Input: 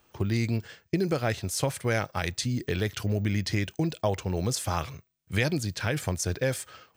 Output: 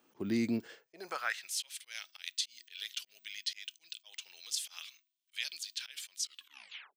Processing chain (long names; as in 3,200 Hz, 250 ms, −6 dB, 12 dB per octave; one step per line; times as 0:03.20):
turntable brake at the end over 0.80 s
volume swells 134 ms
high-pass filter sweep 250 Hz → 3,200 Hz, 0:00.58–0:01.60
level −6.5 dB